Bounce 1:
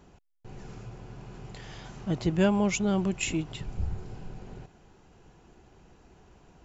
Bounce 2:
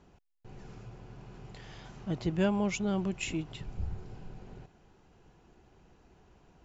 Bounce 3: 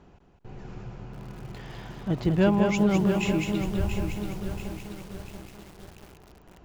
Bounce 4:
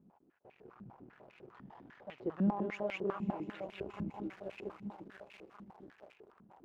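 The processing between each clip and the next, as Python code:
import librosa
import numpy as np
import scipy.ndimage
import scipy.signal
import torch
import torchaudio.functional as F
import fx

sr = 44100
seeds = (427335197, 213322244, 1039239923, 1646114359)

y1 = scipy.signal.sosfilt(scipy.signal.butter(2, 6800.0, 'lowpass', fs=sr, output='sos'), x)
y1 = y1 * 10.0 ** (-4.5 / 20.0)
y2 = fx.high_shelf(y1, sr, hz=5000.0, db=-10.5)
y2 = fx.echo_feedback(y2, sr, ms=203, feedback_pct=20, wet_db=-5.0)
y2 = fx.echo_crushed(y2, sr, ms=684, feedback_pct=55, bits=8, wet_db=-7.5)
y2 = y2 * 10.0 ** (6.5 / 20.0)
y3 = np.where(y2 < 0.0, 10.0 ** (-12.0 / 20.0) * y2, y2)
y3 = fx.rider(y3, sr, range_db=4, speed_s=2.0)
y3 = fx.filter_held_bandpass(y3, sr, hz=10.0, low_hz=210.0, high_hz=2400.0)
y3 = y3 * 10.0 ** (1.0 / 20.0)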